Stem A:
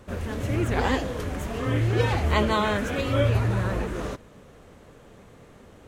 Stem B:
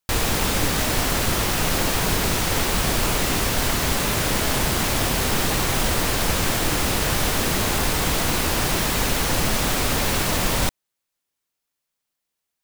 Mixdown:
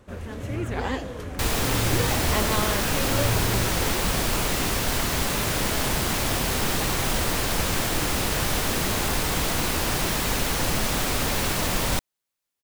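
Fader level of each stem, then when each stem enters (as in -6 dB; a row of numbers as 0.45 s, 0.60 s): -4.0 dB, -3.0 dB; 0.00 s, 1.30 s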